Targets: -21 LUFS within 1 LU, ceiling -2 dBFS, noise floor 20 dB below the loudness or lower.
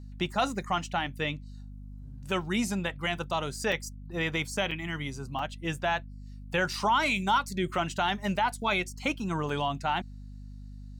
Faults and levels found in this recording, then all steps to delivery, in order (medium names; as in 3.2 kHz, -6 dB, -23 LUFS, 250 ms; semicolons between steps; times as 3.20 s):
dropouts 4; longest dropout 4.1 ms; hum 50 Hz; highest harmonic 250 Hz; hum level -41 dBFS; loudness -30.0 LUFS; peak level -16.0 dBFS; loudness target -21.0 LUFS
-> interpolate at 3.72/4.71/5.39/9.49 s, 4.1 ms; de-hum 50 Hz, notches 5; trim +9 dB